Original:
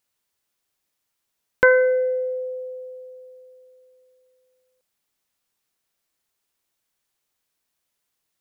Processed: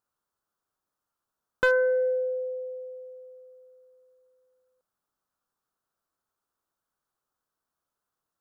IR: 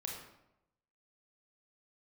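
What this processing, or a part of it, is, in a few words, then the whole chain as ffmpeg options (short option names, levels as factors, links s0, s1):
clipper into limiter: -af "highshelf=f=1700:t=q:w=3:g=-8,asoftclip=type=hard:threshold=0.398,alimiter=limit=0.251:level=0:latency=1:release=357,volume=0.668"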